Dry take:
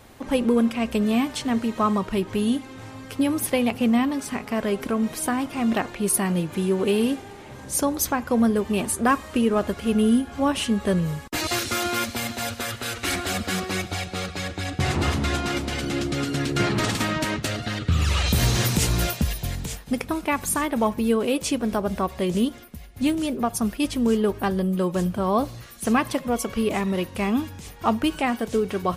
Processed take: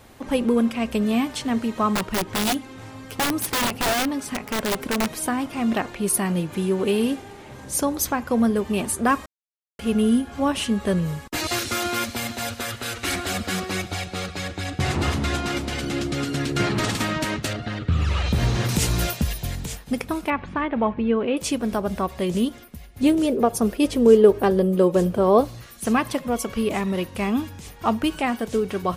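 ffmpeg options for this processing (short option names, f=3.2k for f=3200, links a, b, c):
-filter_complex "[0:a]asettb=1/sr,asplit=3[a][b][c];[a]atrim=end=1.954[d];[b]atrim=start=1.95:end=5.12,asetpts=PTS-STARTPTS,afade=t=in:d=0.004:c=qsin,afade=t=out:st=3.166:d=0.004:c=qsin,aeval=exprs='(mod(7.5*val(0)+1,2)-1)/7.5':c=same[e];[c]atrim=start=5.116[f];[d][e]acrossfade=d=0.004:c1=hsin:c2=qsin[g];[g][f]acrossfade=d=0.004:c1=qsin:c2=hsin,asettb=1/sr,asplit=3[h][i][j];[h]atrim=end=17.534[k];[i]atrim=start=17.53:end=18.69,asetpts=PTS-STARTPTS,afade=t=in:d=0.004:c=qsin,afade=t=out:st=1.156:d=0.004:c=qsin,aemphasis=mode=reproduction:type=75kf[l];[j]atrim=start=18.686[m];[k][l]acrossfade=d=0.004:c1=hsin:c2=qsin[n];[n][m]acrossfade=d=0.004:c1=qsin:c2=hsin,asettb=1/sr,asplit=3[o][p][q];[o]atrim=end=20.304[r];[p]atrim=start=20.3:end=21.37,asetpts=PTS-STARTPTS,afade=t=in:d=0.004:c=qsin,afade=t=out:st=1.066:d=0.004:c=qsin,lowpass=f=2.9k:w=0.5412,lowpass=f=2.9k:w=1.3066[s];[q]atrim=start=21.366[t];[r][s]acrossfade=d=0.004:c1=hsin:c2=qsin[u];[u][t]acrossfade=d=0.004:c1=qsin:c2=hsin,asettb=1/sr,asplit=3[v][w][x];[v]atrim=end=23.034[y];[w]atrim=start=23.03:end=25.41,asetpts=PTS-STARTPTS,afade=t=in:d=0.004:c=qsin,afade=t=out:st=2.376:d=0.004:c=qsin,equalizer=f=460:w=1.5:g=11.5[z];[x]atrim=start=25.406[aa];[y][z]acrossfade=d=0.004:c1=hsin:c2=qsin[ab];[ab][aa]acrossfade=d=0.004:c1=qsin:c2=hsin,asplit=3[ac][ad][ae];[ac]atrim=end=9.26,asetpts=PTS-STARTPTS,afade=t=out:st=9.256:d=0.004:c=hsin[af];[ad]atrim=start=9.26:end=9.79,asetpts=PTS-STARTPTS,volume=0[ag];[ae]atrim=start=9.79,asetpts=PTS-STARTPTS,afade=t=in:d=0.004:c=hsin[ah];[af][ag][ah]concat=n=3:v=0:a=1"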